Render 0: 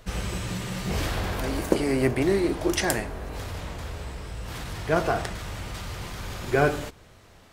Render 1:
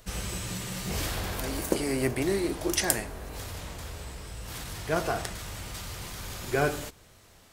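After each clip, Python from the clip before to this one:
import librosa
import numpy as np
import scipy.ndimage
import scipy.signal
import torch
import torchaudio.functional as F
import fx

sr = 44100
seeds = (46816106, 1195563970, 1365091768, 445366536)

y = fx.high_shelf(x, sr, hz=5000.0, db=11.5)
y = y * 10.0 ** (-5.0 / 20.0)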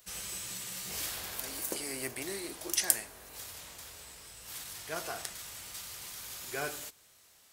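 y = fx.tilt_eq(x, sr, slope=3.0)
y = y * 10.0 ** (-9.5 / 20.0)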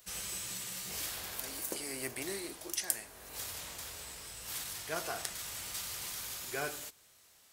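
y = fx.rider(x, sr, range_db=5, speed_s=0.5)
y = y * 10.0 ** (-1.5 / 20.0)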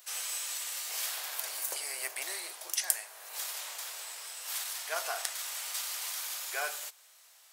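y = scipy.signal.sosfilt(scipy.signal.butter(4, 610.0, 'highpass', fs=sr, output='sos'), x)
y = y * 10.0 ** (4.0 / 20.0)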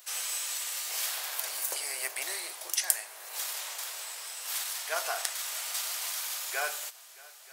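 y = fx.echo_heads(x, sr, ms=311, heads='second and third', feedback_pct=45, wet_db=-22.0)
y = y * 10.0 ** (2.5 / 20.0)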